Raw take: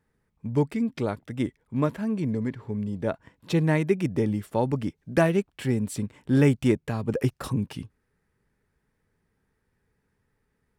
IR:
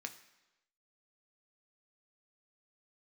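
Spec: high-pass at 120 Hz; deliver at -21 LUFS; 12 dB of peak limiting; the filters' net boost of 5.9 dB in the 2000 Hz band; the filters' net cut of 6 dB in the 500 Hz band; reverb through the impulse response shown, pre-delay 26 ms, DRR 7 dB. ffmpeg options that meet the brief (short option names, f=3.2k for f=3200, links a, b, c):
-filter_complex "[0:a]highpass=120,equalizer=f=500:t=o:g=-8.5,equalizer=f=2k:t=o:g=7.5,alimiter=limit=-20.5dB:level=0:latency=1,asplit=2[a][b];[1:a]atrim=start_sample=2205,adelay=26[c];[b][c]afir=irnorm=-1:irlink=0,volume=-5dB[d];[a][d]amix=inputs=2:normalize=0,volume=10.5dB"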